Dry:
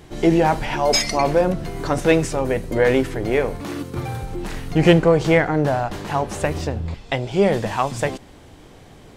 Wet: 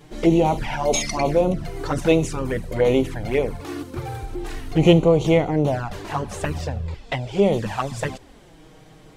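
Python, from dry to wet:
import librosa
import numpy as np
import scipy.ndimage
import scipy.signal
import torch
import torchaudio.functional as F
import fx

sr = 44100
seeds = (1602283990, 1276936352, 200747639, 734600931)

y = fx.env_flanger(x, sr, rest_ms=7.4, full_db=-14.0)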